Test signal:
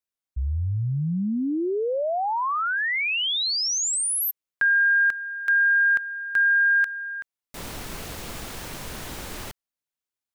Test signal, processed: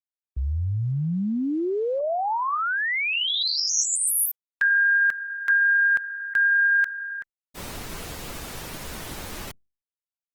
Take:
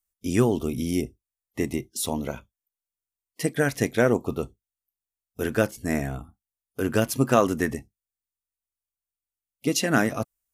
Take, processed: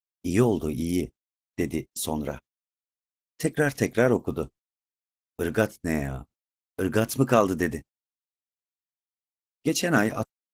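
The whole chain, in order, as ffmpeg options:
ffmpeg -i in.wav -af "agate=range=-33dB:threshold=-36dB:ratio=3:release=68:detection=rms" -ar 48000 -c:a libopus -b:a 16k out.opus

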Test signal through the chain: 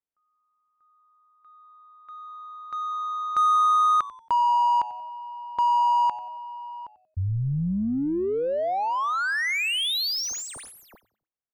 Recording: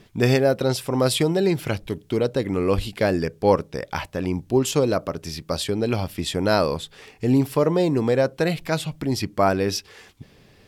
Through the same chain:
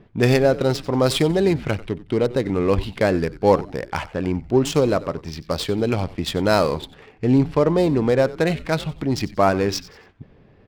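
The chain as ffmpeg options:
ffmpeg -i in.wav -filter_complex "[0:a]adynamicsmooth=sensitivity=5:basefreq=1600,asplit=4[link_01][link_02][link_03][link_04];[link_02]adelay=92,afreqshift=-110,volume=-17.5dB[link_05];[link_03]adelay=184,afreqshift=-220,volume=-26.9dB[link_06];[link_04]adelay=276,afreqshift=-330,volume=-36.2dB[link_07];[link_01][link_05][link_06][link_07]amix=inputs=4:normalize=0,volume=2dB" out.wav

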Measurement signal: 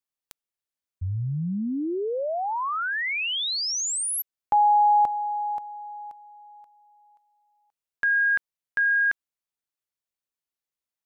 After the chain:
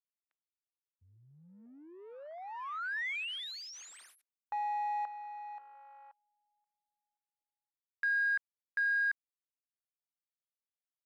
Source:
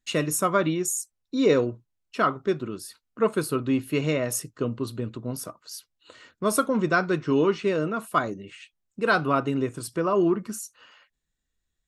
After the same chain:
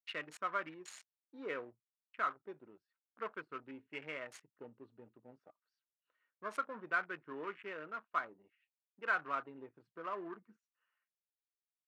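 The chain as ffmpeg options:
ffmpeg -i in.wav -af "afwtdn=0.0178,adynamicsmooth=sensitivity=7.5:basefreq=2100,bandpass=frequency=1900:width_type=q:width=1.3:csg=0,volume=-8dB" out.wav

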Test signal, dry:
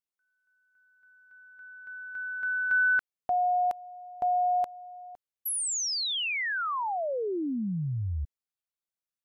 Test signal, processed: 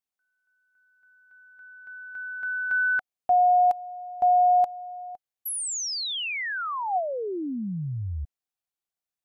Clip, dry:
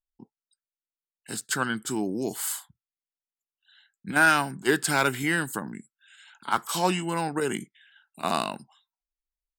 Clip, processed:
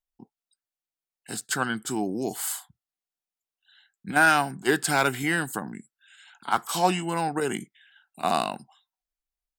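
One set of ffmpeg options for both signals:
ffmpeg -i in.wav -af "equalizer=frequency=740:width_type=o:width=0.2:gain=8" out.wav

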